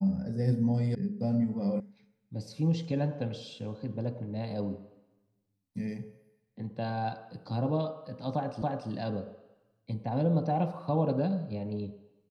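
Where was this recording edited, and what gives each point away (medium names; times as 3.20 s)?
0.95 s: sound stops dead
1.80 s: sound stops dead
8.62 s: repeat of the last 0.28 s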